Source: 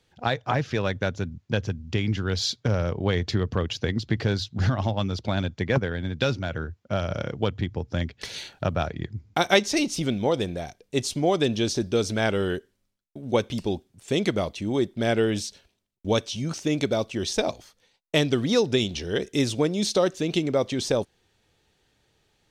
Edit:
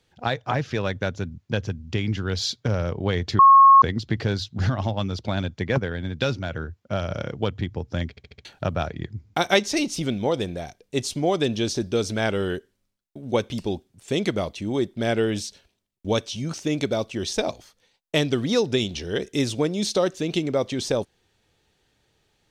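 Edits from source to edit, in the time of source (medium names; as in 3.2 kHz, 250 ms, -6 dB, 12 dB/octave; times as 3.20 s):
3.39–3.82 s: bleep 1.09 kHz -8 dBFS
8.10 s: stutter in place 0.07 s, 5 plays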